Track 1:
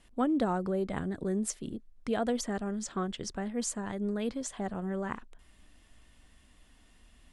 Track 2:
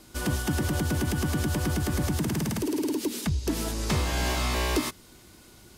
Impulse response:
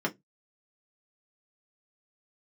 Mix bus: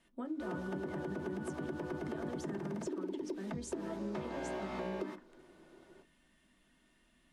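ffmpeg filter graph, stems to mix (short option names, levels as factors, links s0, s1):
-filter_complex "[0:a]alimiter=level_in=1.33:limit=0.0631:level=0:latency=1:release=163,volume=0.75,volume=0.251,asplit=2[s0][s1];[s1]volume=0.562[s2];[1:a]bandpass=f=520:t=q:w=1:csg=0,adelay=250,volume=0.668,asplit=2[s3][s4];[s4]volume=0.237[s5];[2:a]atrim=start_sample=2205[s6];[s2][s5]amix=inputs=2:normalize=0[s7];[s7][s6]afir=irnorm=-1:irlink=0[s8];[s0][s3][s8]amix=inputs=3:normalize=0,acompressor=threshold=0.0158:ratio=6"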